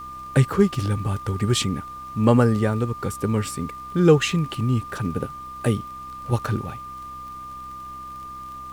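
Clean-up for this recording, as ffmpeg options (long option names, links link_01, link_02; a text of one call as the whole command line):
ffmpeg -i in.wav -af "adeclick=threshold=4,bandreject=frequency=64.7:width_type=h:width=4,bandreject=frequency=129.4:width_type=h:width=4,bandreject=frequency=194.1:width_type=h:width=4,bandreject=frequency=258.8:width_type=h:width=4,bandreject=frequency=323.5:width_type=h:width=4,bandreject=frequency=1200:width=30,agate=range=-21dB:threshold=-29dB" out.wav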